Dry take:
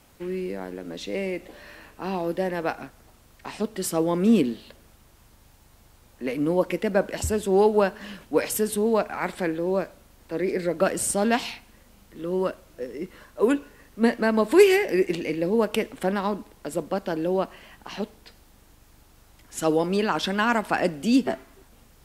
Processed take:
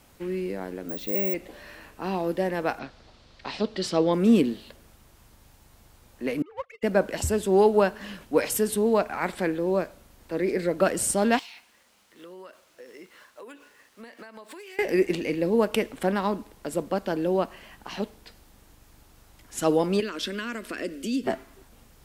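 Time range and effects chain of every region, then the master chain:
0.89–1.34 high shelf 2300 Hz -8 dB + careless resampling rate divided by 2×, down none, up zero stuff
2.79–4.13 synth low-pass 4300 Hz, resonance Q 2.5 + bell 550 Hz +3.5 dB 0.39 oct
6.42–6.83 sine-wave speech + HPF 1100 Hz + power-law curve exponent 1.4
11.39–14.79 median filter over 3 samples + HPF 1200 Hz 6 dB/oct + compressor 12:1, threshold -40 dBFS
20–21.24 compressor 2.5:1, threshold -25 dBFS + fixed phaser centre 340 Hz, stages 4
whole clip: dry

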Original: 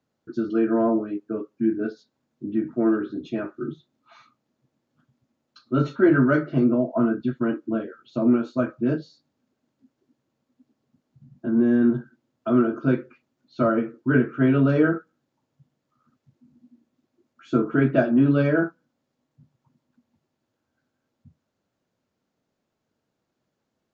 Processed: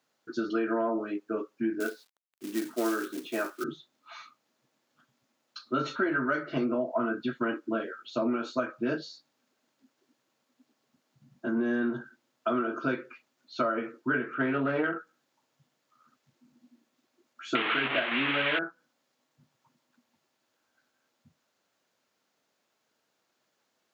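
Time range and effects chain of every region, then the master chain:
1.8–3.64 three-band isolator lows -14 dB, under 220 Hz, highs -12 dB, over 2900 Hz + companded quantiser 6-bit
14.34–14.97 self-modulated delay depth 0.1 ms + LPF 2400 Hz
17.55–18.59 delta modulation 16 kbps, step -19 dBFS + high shelf 2000 Hz +11.5 dB
whole clip: HPF 1300 Hz 6 dB/oct; compressor 10:1, threshold -33 dBFS; gain +8.5 dB

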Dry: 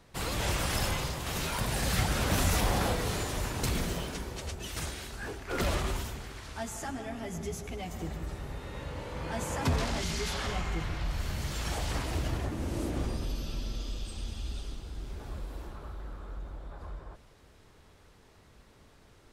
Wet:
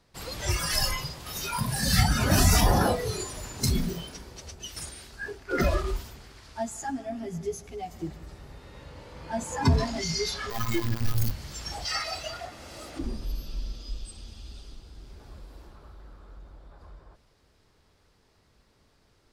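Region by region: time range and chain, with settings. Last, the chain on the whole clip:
10.5–11.31 bell 150 Hz -5.5 dB 0.94 oct + robotiser 114 Hz + companded quantiser 2-bit
11.85–12.99 low shelf 490 Hz -6.5 dB + comb 1.5 ms, depth 35% + overdrive pedal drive 11 dB, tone 7900 Hz, clips at -23.5 dBFS
whole clip: spectral noise reduction 14 dB; bell 4800 Hz +6.5 dB 0.46 oct; gain +7.5 dB

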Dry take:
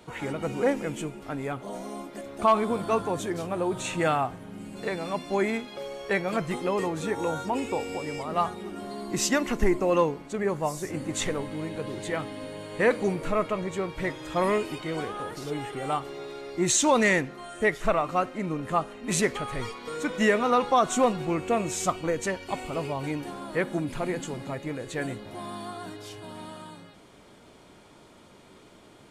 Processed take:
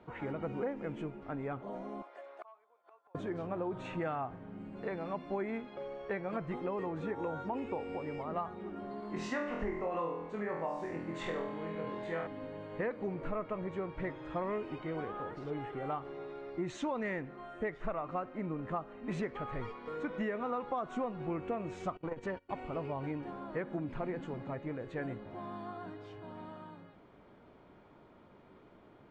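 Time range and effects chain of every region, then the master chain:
2.02–3.15 HPF 570 Hz 24 dB/oct + flipped gate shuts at -28 dBFS, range -30 dB
9–12.27 low shelf 360 Hz -8 dB + flutter echo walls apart 4.1 m, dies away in 0.62 s
21.97–22.56 gate -38 dBFS, range -22 dB + core saturation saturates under 390 Hz
whole clip: LPF 1800 Hz 12 dB/oct; compressor 6:1, threshold -27 dBFS; gain -5.5 dB

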